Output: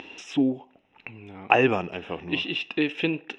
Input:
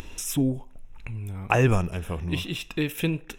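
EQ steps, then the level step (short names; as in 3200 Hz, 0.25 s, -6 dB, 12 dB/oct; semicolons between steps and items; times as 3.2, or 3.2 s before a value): speaker cabinet 230–4700 Hz, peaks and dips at 280 Hz +4 dB, 780 Hz +7 dB, 1900 Hz +4 dB, 2800 Hz +9 dB; bell 390 Hz +4 dB 1.1 oct; -1.5 dB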